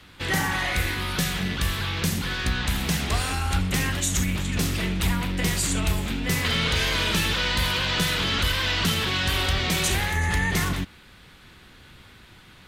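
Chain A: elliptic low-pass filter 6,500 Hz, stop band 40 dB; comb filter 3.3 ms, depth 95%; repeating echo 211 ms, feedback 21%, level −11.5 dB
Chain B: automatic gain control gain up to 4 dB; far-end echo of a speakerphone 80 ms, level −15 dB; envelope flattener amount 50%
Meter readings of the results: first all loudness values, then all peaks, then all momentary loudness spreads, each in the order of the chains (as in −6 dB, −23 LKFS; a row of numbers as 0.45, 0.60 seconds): −22.0, −18.0 LKFS; −8.0, −6.0 dBFS; 5, 14 LU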